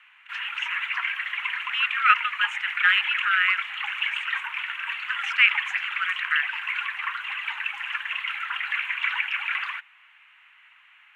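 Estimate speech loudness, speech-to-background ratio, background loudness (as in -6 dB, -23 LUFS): -24.0 LUFS, 4.0 dB, -28.0 LUFS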